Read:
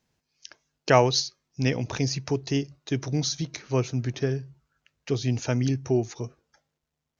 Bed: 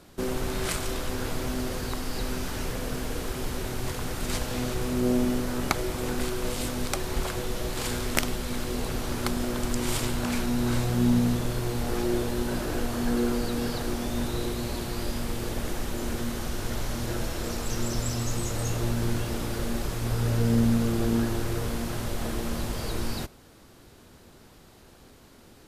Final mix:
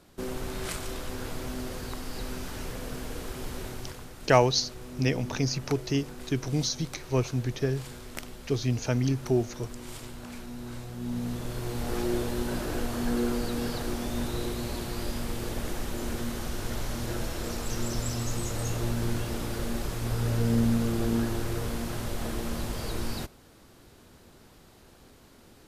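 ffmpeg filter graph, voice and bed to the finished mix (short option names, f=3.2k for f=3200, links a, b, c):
-filter_complex "[0:a]adelay=3400,volume=-1.5dB[a];[1:a]volume=6.5dB,afade=t=out:st=3.64:d=0.46:silence=0.375837,afade=t=in:st=11:d=0.98:silence=0.266073[b];[a][b]amix=inputs=2:normalize=0"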